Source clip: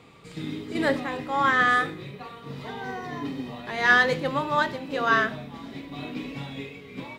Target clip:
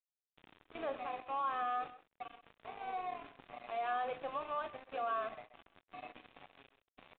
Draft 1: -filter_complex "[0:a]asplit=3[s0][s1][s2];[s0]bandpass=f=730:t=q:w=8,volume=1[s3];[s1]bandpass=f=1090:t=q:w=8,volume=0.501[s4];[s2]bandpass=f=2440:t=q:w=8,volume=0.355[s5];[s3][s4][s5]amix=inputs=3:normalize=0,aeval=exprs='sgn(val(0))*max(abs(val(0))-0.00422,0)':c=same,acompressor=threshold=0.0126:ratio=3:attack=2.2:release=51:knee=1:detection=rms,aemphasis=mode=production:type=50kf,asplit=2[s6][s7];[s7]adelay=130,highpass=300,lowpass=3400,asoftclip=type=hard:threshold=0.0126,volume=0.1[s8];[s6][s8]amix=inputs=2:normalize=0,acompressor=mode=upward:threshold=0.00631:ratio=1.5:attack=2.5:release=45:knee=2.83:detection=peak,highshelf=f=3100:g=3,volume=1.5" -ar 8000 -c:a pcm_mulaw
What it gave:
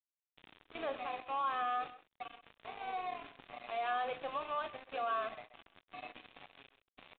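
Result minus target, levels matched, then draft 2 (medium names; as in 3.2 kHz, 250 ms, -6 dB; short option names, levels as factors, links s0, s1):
4 kHz band +4.5 dB
-filter_complex "[0:a]asplit=3[s0][s1][s2];[s0]bandpass=f=730:t=q:w=8,volume=1[s3];[s1]bandpass=f=1090:t=q:w=8,volume=0.501[s4];[s2]bandpass=f=2440:t=q:w=8,volume=0.355[s5];[s3][s4][s5]amix=inputs=3:normalize=0,aeval=exprs='sgn(val(0))*max(abs(val(0))-0.00422,0)':c=same,acompressor=threshold=0.0126:ratio=3:attack=2.2:release=51:knee=1:detection=rms,aemphasis=mode=production:type=50kf,asplit=2[s6][s7];[s7]adelay=130,highpass=300,lowpass=3400,asoftclip=type=hard:threshold=0.0126,volume=0.1[s8];[s6][s8]amix=inputs=2:normalize=0,acompressor=mode=upward:threshold=0.00631:ratio=1.5:attack=2.5:release=45:knee=2.83:detection=peak,highshelf=f=3100:g=-7.5,volume=1.5" -ar 8000 -c:a pcm_mulaw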